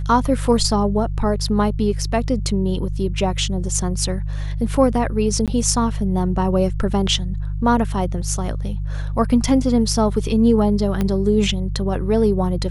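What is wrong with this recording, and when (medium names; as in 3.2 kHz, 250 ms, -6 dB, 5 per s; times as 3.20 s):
hum 50 Hz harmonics 3 -24 dBFS
5.46–5.48 s: dropout 17 ms
11.01 s: pop -9 dBFS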